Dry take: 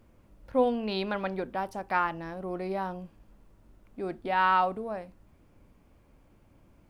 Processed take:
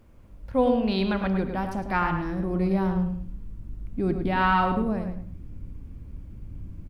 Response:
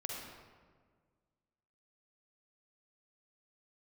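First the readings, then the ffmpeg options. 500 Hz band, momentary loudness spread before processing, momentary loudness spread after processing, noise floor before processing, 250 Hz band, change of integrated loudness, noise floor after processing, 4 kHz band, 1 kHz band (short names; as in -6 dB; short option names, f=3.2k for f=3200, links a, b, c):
+3.5 dB, 13 LU, 20 LU, -61 dBFS, +10.5 dB, +4.5 dB, -46 dBFS, +3.0 dB, +1.5 dB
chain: -filter_complex "[0:a]asubboost=boost=8:cutoff=230,asplit=2[a][b];[b]adelay=106,lowpass=f=3.8k:p=1,volume=-6.5dB,asplit=2[c][d];[d]adelay=106,lowpass=f=3.8k:p=1,volume=0.26,asplit=2[e][f];[f]adelay=106,lowpass=f=3.8k:p=1,volume=0.26[g];[a][c][e][g]amix=inputs=4:normalize=0,asplit=2[h][i];[1:a]atrim=start_sample=2205,afade=t=out:st=0.2:d=0.01,atrim=end_sample=9261,lowshelf=f=170:g=7.5[j];[i][j]afir=irnorm=-1:irlink=0,volume=-6.5dB[k];[h][k]amix=inputs=2:normalize=0"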